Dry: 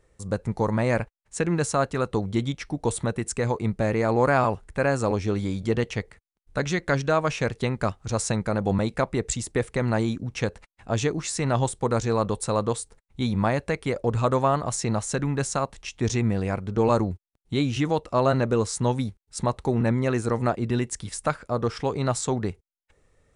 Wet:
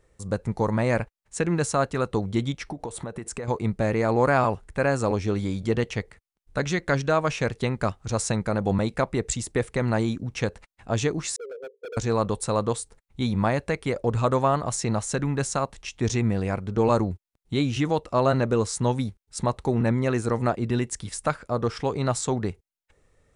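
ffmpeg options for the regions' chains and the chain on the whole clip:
-filter_complex "[0:a]asettb=1/sr,asplit=3[s0][s1][s2];[s0]atrim=end=2.664[s3];[s1]atrim=start=2.66:end=3.48,asetpts=PTS-STARTPTS,afade=t=in:d=0.004:c=qsin,afade=t=out:st=0.816:d=0.004:c=qsin,equalizer=f=730:w=0.45:g=7,acompressor=threshold=0.0355:ratio=10:attack=3.2:release=140:knee=1:detection=peak[s4];[s2]atrim=start=3.476[s5];[s3][s4]acrossfade=d=0.004:c1=hsin:c2=qsin[s6];[s6][s5]acrossfade=d=0.004:c1=qsin:c2=hsin,asettb=1/sr,asplit=3[s7][s8][s9];[s7]atrim=end=11.364[s10];[s8]atrim=start=11.36:end=11.97,asetpts=PTS-STARTPTS,afade=t=in:d=0.004:c=qsin,afade=t=out:st=0.606:d=0.004:c=qsin,asuperpass=centerf=460:order=12:qfactor=3.2,asoftclip=type=hard:threshold=0.02[s11];[s9]atrim=start=11.966[s12];[s10][s11]acrossfade=d=0.004:c1=hsin:c2=qsin[s13];[s13][s12]acrossfade=d=0.004:c1=qsin:c2=hsin"

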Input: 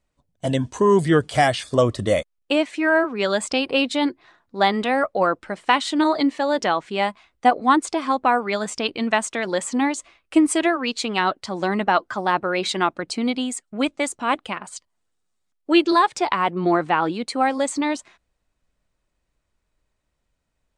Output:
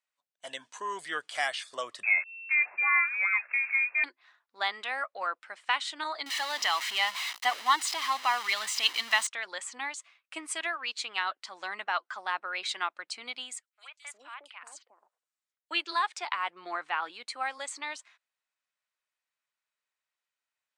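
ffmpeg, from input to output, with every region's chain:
-filter_complex "[0:a]asettb=1/sr,asplit=3[s0][s1][s2];[s0]atrim=end=2.034[s3];[s1]atrim=start=2.03:end=4.04,asetpts=PTS-STARTPTS,afade=t=in:d=0.004:c=qsin,afade=t=out:st=2.006:d=0.004:c=qsin,aeval=exprs='val(0)+0.5*0.0282*sgn(val(0))':c=same,lowpass=f=2300:t=q:w=0.5098,lowpass=f=2300:t=q:w=0.6013,lowpass=f=2300:t=q:w=0.9,lowpass=f=2300:t=q:w=2.563,afreqshift=-2700[s4];[s2]atrim=start=4.036[s5];[s3][s4]acrossfade=d=0.004:c1=hsin:c2=qsin[s6];[s6][s5]acrossfade=d=0.004:c1=qsin:c2=hsin,asettb=1/sr,asplit=3[s7][s8][s9];[s7]atrim=end=6.264[s10];[s8]atrim=start=6.26:end=9.27,asetpts=PTS-STARTPTS,afade=t=in:d=0.004:c=qsin,afade=t=out:st=3.006:d=0.004:c=qsin,aeval=exprs='val(0)+0.5*0.0562*sgn(val(0))':c=same,equalizer=f=4000:t=o:w=1.6:g=7,aecho=1:1:1:0.43,atrim=end_sample=132741[s11];[s9]atrim=start=9.266[s12];[s10][s11]acrossfade=d=0.004:c1=hsin:c2=qsin[s13];[s13][s12]acrossfade=d=0.004:c1=qsin:c2=hsin,asettb=1/sr,asplit=3[s14][s15][s16];[s14]atrim=end=13.664[s17];[s15]atrim=start=13.66:end=15.71,asetpts=PTS-STARTPTS,afade=t=in:d=0.004:c=qsin,afade=t=out:st=2.046:d=0.004:c=qsin,highpass=f=280:w=0.5412,highpass=f=280:w=1.3066,acompressor=threshold=0.0178:ratio=2:attack=3.2:release=140:knee=1:detection=peak,acrossover=split=700|3600[s18][s19][s20];[s19]adelay=50[s21];[s18]adelay=410[s22];[s22][s21][s20]amix=inputs=3:normalize=0,atrim=end_sample=90405[s23];[s16]atrim=start=15.706[s24];[s17][s23]acrossfade=d=0.004:c1=hsin:c2=qsin[s25];[s25][s24]acrossfade=d=0.004:c1=qsin:c2=hsin,highpass=1400,highshelf=f=4100:g=-6,volume=0.596"

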